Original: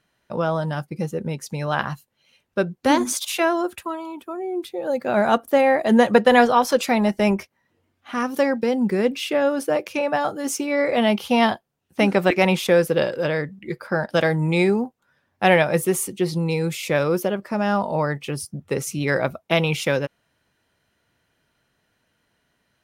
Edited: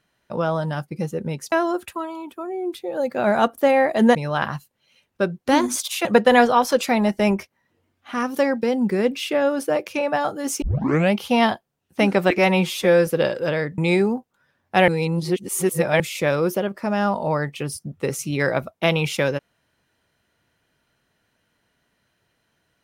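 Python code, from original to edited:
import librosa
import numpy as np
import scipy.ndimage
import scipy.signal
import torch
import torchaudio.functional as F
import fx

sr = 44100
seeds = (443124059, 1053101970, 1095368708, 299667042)

y = fx.edit(x, sr, fx.move(start_s=1.52, length_s=1.9, to_s=6.05),
    fx.tape_start(start_s=10.62, length_s=0.52),
    fx.stretch_span(start_s=12.38, length_s=0.46, factor=1.5),
    fx.cut(start_s=13.55, length_s=0.91),
    fx.reverse_span(start_s=15.56, length_s=1.12), tone=tone)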